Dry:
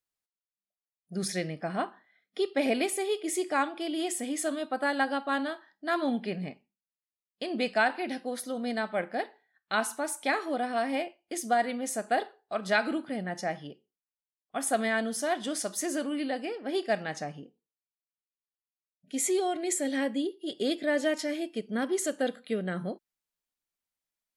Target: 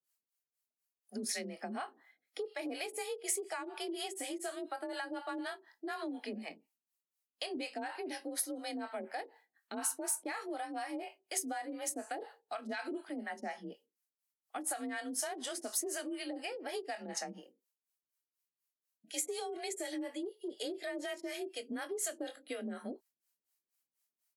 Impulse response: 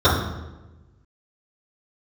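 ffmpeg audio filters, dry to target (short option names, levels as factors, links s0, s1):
-filter_complex "[0:a]asplit=2[s0][s1];[s1]adelay=23,volume=0.282[s2];[s0][s2]amix=inputs=2:normalize=0,acrossover=split=500[s3][s4];[s3]aeval=exprs='val(0)*(1-1/2+1/2*cos(2*PI*4.1*n/s))':c=same[s5];[s4]aeval=exprs='val(0)*(1-1/2-1/2*cos(2*PI*4.1*n/s))':c=same[s6];[s5][s6]amix=inputs=2:normalize=0,alimiter=level_in=1.19:limit=0.0631:level=0:latency=1:release=80,volume=0.841,aeval=exprs='(tanh(7.94*val(0)+0.25)-tanh(0.25))/7.94':c=same,highpass=130,acompressor=threshold=0.00891:ratio=4,aemphasis=mode=production:type=cd,bandreject=f=3500:w=13,afreqshift=37,volume=1.41"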